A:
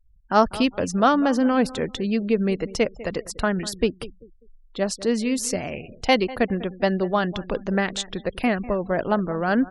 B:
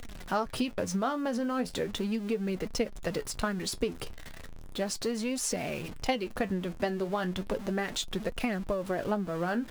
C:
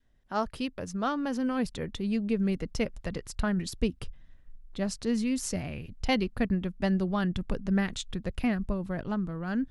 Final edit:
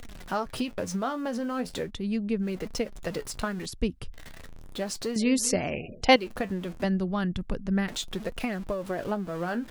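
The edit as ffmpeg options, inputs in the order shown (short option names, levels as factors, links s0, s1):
-filter_complex "[2:a]asplit=3[s0][s1][s2];[1:a]asplit=5[s3][s4][s5][s6][s7];[s3]atrim=end=1.91[s8];[s0]atrim=start=1.81:end=2.49[s9];[s4]atrim=start=2.39:end=3.662[s10];[s1]atrim=start=3.658:end=4.142[s11];[s5]atrim=start=4.138:end=5.162[s12];[0:a]atrim=start=5.158:end=6.162[s13];[s6]atrim=start=6.158:end=6.842[s14];[s2]atrim=start=6.838:end=7.882[s15];[s7]atrim=start=7.878[s16];[s8][s9]acrossfade=d=0.1:c1=tri:c2=tri[s17];[s17][s10]acrossfade=d=0.1:c1=tri:c2=tri[s18];[s18][s11]acrossfade=d=0.004:c1=hsin:c2=hsin[s19];[s19][s12]acrossfade=d=0.004:c1=hsin:c2=hsin[s20];[s20][s13]acrossfade=d=0.004:c1=hsin:c2=hsin[s21];[s21][s14]acrossfade=d=0.004:c1=hsin:c2=hsin[s22];[s22][s15]acrossfade=d=0.004:c1=hsin:c2=hsin[s23];[s23][s16]acrossfade=d=0.004:c1=hsin:c2=hsin"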